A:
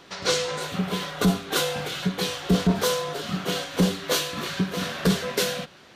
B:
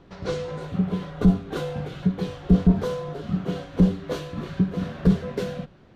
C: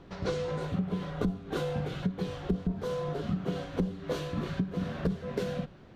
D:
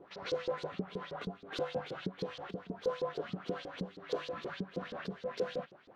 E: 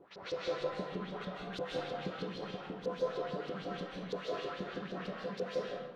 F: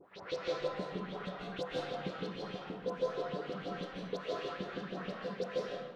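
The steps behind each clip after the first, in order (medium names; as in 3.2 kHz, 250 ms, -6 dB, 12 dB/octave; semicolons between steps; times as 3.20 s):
tilt EQ -4.5 dB/octave; trim -7 dB
compression 8:1, threshold -27 dBFS, peak gain reduction 16 dB
LFO band-pass saw up 6.3 Hz 360–5300 Hz; trim +5.5 dB
reverberation RT60 0.80 s, pre-delay 112 ms, DRR -3 dB; trim -4 dB
phase dispersion highs, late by 49 ms, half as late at 2.4 kHz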